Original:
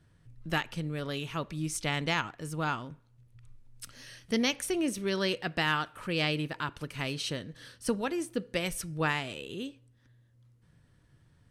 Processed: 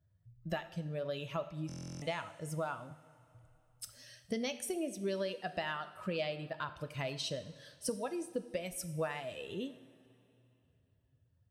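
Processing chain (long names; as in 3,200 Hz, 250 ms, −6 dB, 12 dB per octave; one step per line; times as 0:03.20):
spectral dynamics exaggerated over time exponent 1.5
high-pass filter 97 Hz 6 dB per octave
parametric band 610 Hz +13.5 dB 0.52 octaves
downward compressor 5 to 1, threshold −41 dBFS, peak gain reduction 17.5 dB
convolution reverb, pre-delay 3 ms, DRR 9.5 dB
buffer that repeats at 0:01.67, samples 1,024, times 14
level +5 dB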